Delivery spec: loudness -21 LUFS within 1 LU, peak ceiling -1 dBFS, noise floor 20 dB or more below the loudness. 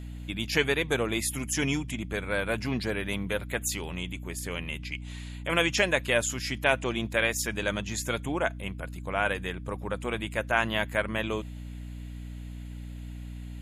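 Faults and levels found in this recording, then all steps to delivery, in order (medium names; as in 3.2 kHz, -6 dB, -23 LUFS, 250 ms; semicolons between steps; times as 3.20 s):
hum 60 Hz; highest harmonic 300 Hz; hum level -37 dBFS; loudness -29.5 LUFS; peak level -8.0 dBFS; loudness target -21.0 LUFS
-> de-hum 60 Hz, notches 5; trim +8.5 dB; peak limiter -1 dBFS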